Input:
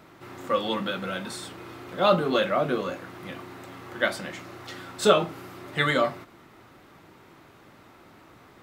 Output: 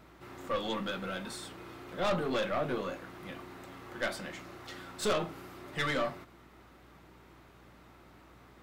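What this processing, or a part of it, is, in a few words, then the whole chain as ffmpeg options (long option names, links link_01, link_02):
valve amplifier with mains hum: -af "aeval=exprs='(tanh(11.2*val(0)+0.35)-tanh(0.35))/11.2':channel_layout=same,aeval=exprs='val(0)+0.00141*(sin(2*PI*60*n/s)+sin(2*PI*2*60*n/s)/2+sin(2*PI*3*60*n/s)/3+sin(2*PI*4*60*n/s)/4+sin(2*PI*5*60*n/s)/5)':channel_layout=same,volume=-4.5dB"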